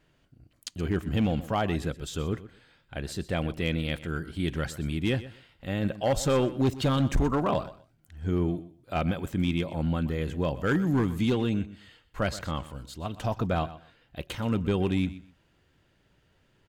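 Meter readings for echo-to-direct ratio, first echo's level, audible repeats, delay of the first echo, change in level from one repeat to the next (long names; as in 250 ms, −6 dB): −16.0 dB, −16.0 dB, 2, 124 ms, −14.0 dB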